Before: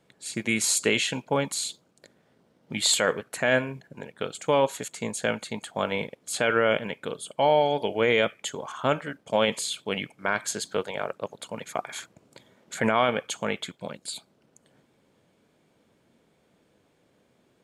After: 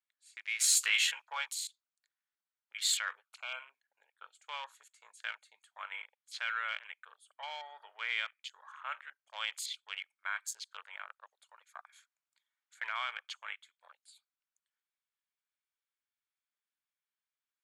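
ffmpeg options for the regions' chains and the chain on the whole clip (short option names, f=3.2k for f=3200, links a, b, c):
-filter_complex "[0:a]asettb=1/sr,asplit=3[a][b][c];[a]atrim=end=0.594[d];[b]atrim=start=0.59:end=1.53,asetpts=PTS-STARTPTS,afade=t=in:d=0.004:c=qsin,afade=t=out:st=0.936:d=0.004:c=qsin,equalizer=f=96:t=o:w=1.2:g=-15,asplit=2[e][f];[f]adelay=13,volume=-5.5dB[g];[e][g]amix=inputs=2:normalize=0,atrim=end_sample=41454,acontrast=24[h];[c]atrim=start=1.526[i];[d][h]acrossfade=d=0.004:c1=hsin:c2=qsin[j];[j][i]acrossfade=d=0.004:c1=qsin:c2=hsin,asettb=1/sr,asplit=3[k][l][m];[k]atrim=end=3.254[n];[l]atrim=start=3.25:end=3.73,asetpts=PTS-STARTPTS,afade=t=in:d=0.004:c=qsin,afade=t=out:st=0.476:d=0.004:c=qsin,asuperstop=centerf=1800:order=8:qfactor=2.6,highshelf=f=7.9k:g=-5[o];[m]atrim=start=3.726[p];[n][o]acrossfade=d=0.004:c1=hsin:c2=qsin[q];[q][p]acrossfade=d=0.004:c1=qsin:c2=hsin,afwtdn=0.0141,highpass=f=1.2k:w=0.5412,highpass=f=1.2k:w=1.3066,volume=-8dB"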